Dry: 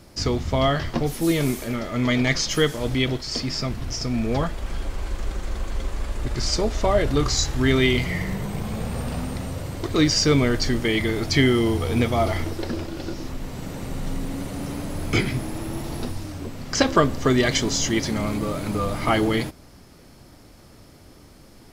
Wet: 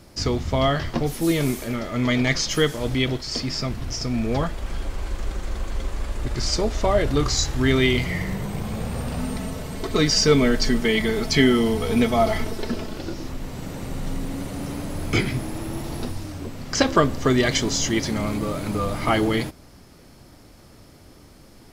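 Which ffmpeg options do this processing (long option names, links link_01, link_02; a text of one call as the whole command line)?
ffmpeg -i in.wav -filter_complex "[0:a]asettb=1/sr,asplit=3[link_01][link_02][link_03];[link_01]atrim=end=9.194[link_04];[link_02]atrim=start=9.19:end=12.98,asetpts=PTS-STARTPTS,afade=type=in:duration=0.004:curve=qsin,afade=type=out:start_time=3.786:duration=0.004:curve=qsin,aecho=1:1:4.6:0.66,atrim=end_sample=167139[link_05];[link_03]atrim=start=12.976[link_06];[link_04][link_05]acrossfade=duration=0.004:curve1=hsin:curve2=qsin[link_07];[link_07][link_06]acrossfade=duration=0.004:curve1=qsin:curve2=hsin" out.wav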